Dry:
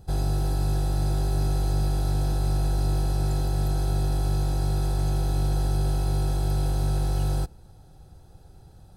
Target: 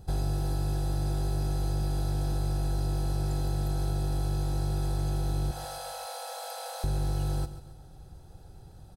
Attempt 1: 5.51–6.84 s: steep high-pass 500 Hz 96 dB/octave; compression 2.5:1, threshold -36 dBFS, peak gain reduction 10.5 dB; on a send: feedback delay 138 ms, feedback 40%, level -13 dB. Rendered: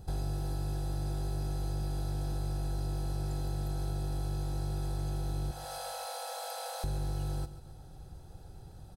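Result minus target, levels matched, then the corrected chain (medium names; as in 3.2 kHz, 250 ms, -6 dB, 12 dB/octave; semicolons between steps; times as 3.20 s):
compression: peak gain reduction +5 dB
5.51–6.84 s: steep high-pass 500 Hz 96 dB/octave; compression 2.5:1, threshold -27.5 dBFS, peak gain reduction 5 dB; on a send: feedback delay 138 ms, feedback 40%, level -13 dB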